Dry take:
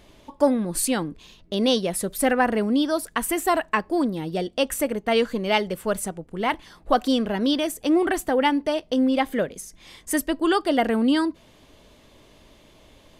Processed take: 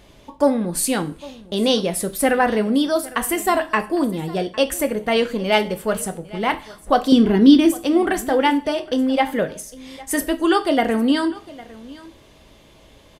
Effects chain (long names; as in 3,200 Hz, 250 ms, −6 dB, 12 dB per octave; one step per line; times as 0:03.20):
0:07.12–0:07.75: low shelf with overshoot 450 Hz +6.5 dB, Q 3
single-tap delay 805 ms −20.5 dB
coupled-rooms reverb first 0.34 s, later 1.5 s, from −26 dB, DRR 7.5 dB
level +2.5 dB